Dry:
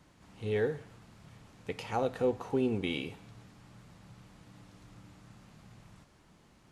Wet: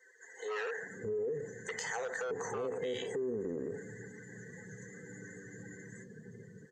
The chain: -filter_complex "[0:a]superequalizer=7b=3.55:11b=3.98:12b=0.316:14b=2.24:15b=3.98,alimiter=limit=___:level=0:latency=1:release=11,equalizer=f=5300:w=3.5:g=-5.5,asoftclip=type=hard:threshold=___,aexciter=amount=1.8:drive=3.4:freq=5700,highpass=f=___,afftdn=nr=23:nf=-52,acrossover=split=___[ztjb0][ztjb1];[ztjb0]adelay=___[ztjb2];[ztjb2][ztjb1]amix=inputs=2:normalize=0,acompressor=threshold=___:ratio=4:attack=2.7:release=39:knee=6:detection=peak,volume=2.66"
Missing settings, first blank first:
0.158, 0.0891, 160, 580, 620, 0.00501